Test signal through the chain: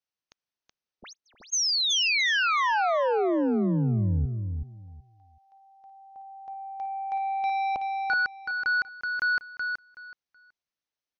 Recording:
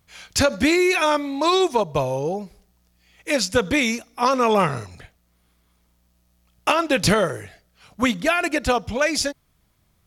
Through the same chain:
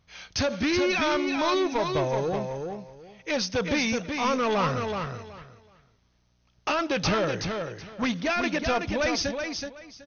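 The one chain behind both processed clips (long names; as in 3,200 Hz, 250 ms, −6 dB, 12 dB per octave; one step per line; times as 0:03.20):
soft clipping −20 dBFS
linear-phase brick-wall low-pass 6,500 Hz
on a send: repeating echo 375 ms, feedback 20%, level −5.5 dB
on the sum: level −1.5 dB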